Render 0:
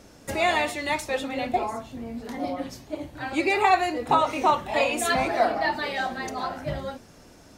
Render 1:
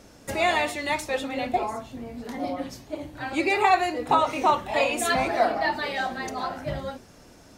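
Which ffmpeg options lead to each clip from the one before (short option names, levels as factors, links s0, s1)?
-af "bandreject=f=76.43:t=h:w=4,bandreject=f=152.86:t=h:w=4,bandreject=f=229.29:t=h:w=4,bandreject=f=305.72:t=h:w=4,bandreject=f=382.15:t=h:w=4"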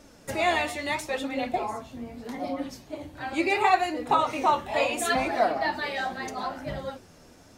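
-af "flanger=delay=3.3:depth=9.5:regen=48:speed=0.76:shape=sinusoidal,volume=1.26"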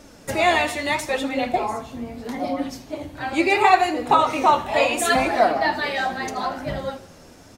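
-af "aecho=1:1:79|158|237|316|395:0.141|0.0735|0.0382|0.0199|0.0103,volume=2"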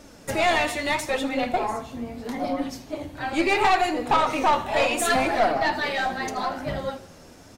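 -af "aeval=exprs='(tanh(5.01*val(0)+0.35)-tanh(0.35))/5.01':c=same"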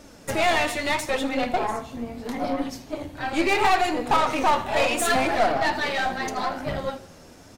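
-af "aeval=exprs='0.282*(cos(1*acos(clip(val(0)/0.282,-1,1)))-cos(1*PI/2))+0.0126*(cos(8*acos(clip(val(0)/0.282,-1,1)))-cos(8*PI/2))':c=same"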